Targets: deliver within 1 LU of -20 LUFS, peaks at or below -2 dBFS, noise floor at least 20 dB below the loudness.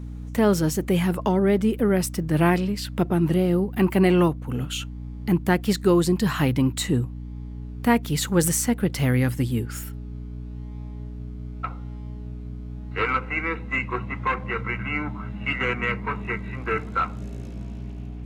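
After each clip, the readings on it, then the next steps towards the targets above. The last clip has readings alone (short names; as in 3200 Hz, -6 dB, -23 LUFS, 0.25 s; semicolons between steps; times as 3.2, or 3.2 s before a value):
hum 60 Hz; harmonics up to 300 Hz; hum level -32 dBFS; loudness -23.5 LUFS; peak -7.0 dBFS; loudness target -20.0 LUFS
-> de-hum 60 Hz, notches 5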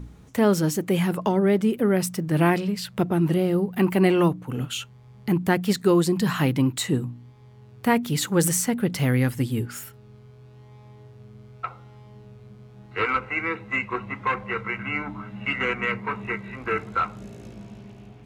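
hum none; loudness -24.0 LUFS; peak -7.0 dBFS; loudness target -20.0 LUFS
-> gain +4 dB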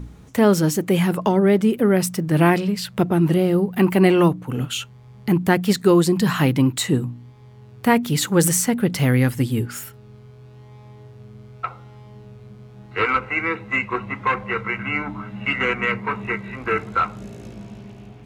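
loudness -20.0 LUFS; peak -3.0 dBFS; noise floor -45 dBFS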